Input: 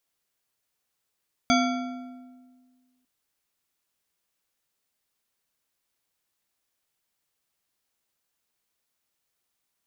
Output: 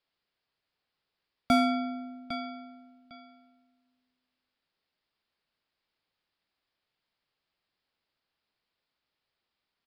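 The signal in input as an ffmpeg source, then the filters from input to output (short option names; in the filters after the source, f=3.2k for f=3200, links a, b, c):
-f lavfi -i "aevalsrc='0.106*pow(10,-3*t/1.77)*sin(2*PI*253*t)+0.0841*pow(10,-3*t/1.306)*sin(2*PI*697.5*t)+0.0668*pow(10,-3*t/1.067)*sin(2*PI*1367.2*t)+0.0531*pow(10,-3*t/0.918)*sin(2*PI*2260*t)+0.0422*pow(10,-3*t/0.814)*sin(2*PI*3375*t)+0.0335*pow(10,-3*t/0.736)*sin(2*PI*4715.9*t)+0.0266*pow(10,-3*t/0.675)*sin(2*PI*6276.9*t)':d=1.55:s=44100"
-filter_complex "[0:a]aresample=11025,aresample=44100,aecho=1:1:804|1608:0.237|0.0427,acrossover=split=460|1600[a][b][c];[c]asoftclip=type=tanh:threshold=-30.5dB[d];[a][b][d]amix=inputs=3:normalize=0"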